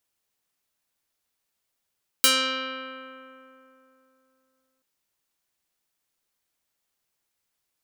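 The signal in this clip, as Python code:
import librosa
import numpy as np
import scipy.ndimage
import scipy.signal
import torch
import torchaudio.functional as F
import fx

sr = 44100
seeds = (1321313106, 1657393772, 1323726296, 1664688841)

y = fx.pluck(sr, length_s=2.58, note=60, decay_s=3.15, pick=0.3, brightness='medium')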